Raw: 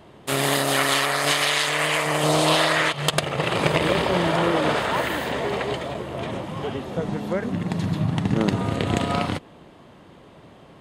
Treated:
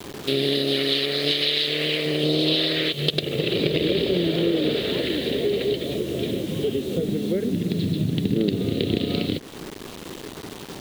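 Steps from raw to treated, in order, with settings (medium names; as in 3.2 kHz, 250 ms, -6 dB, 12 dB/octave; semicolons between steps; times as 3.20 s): FFT filter 120 Hz 0 dB, 420 Hz +9 dB, 950 Hz -22 dB, 4 kHz +10 dB, 6.9 kHz -19 dB, 11 kHz -12 dB; bit crusher 7-bit; compression 2:1, threshold -33 dBFS, peak gain reduction 12 dB; trim +6 dB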